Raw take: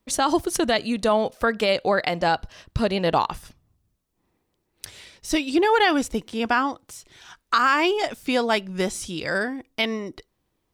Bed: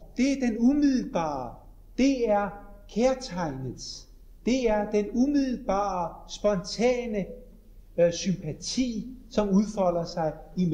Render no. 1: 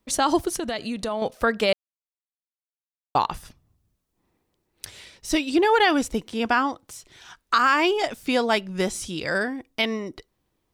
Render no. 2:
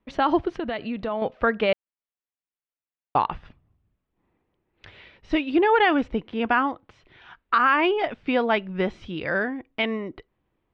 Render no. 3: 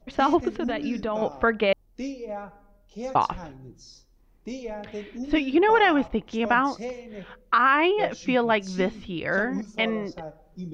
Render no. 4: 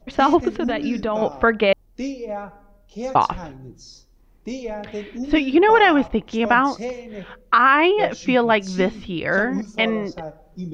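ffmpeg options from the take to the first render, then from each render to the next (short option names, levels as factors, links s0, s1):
-filter_complex "[0:a]asettb=1/sr,asplit=3[s0][s1][s2];[s0]atrim=end=0.504[s3];[s1]atrim=start=0.5:end=1.22,asetpts=PTS-STARTPTS,afade=t=in:d=0.004:c=qsin,afade=t=out:st=0.716:d=0.004:c=qsin,acompressor=threshold=0.0501:ratio=3:attack=3.2:release=140:knee=1:detection=peak[s4];[s2]atrim=start=1.216[s5];[s3][s4]acrossfade=d=0.004:c1=hsin:c2=qsin[s6];[s6][s5]acrossfade=d=0.004:c1=qsin:c2=hsin,asplit=3[s7][s8][s9];[s7]atrim=end=1.73,asetpts=PTS-STARTPTS,afade=t=out:st=1.726:d=0.004:c=hsin[s10];[s8]atrim=start=1.73:end=3.15,asetpts=PTS-STARTPTS,volume=0[s11];[s9]atrim=start=3.15,asetpts=PTS-STARTPTS,afade=t=in:d=0.004:c=hsin[s12];[s10][s11][s12]concat=n=3:v=0:a=1"
-af "lowpass=f=2900:w=0.5412,lowpass=f=2900:w=1.3066"
-filter_complex "[1:a]volume=0.299[s0];[0:a][s0]amix=inputs=2:normalize=0"
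-af "volume=1.78"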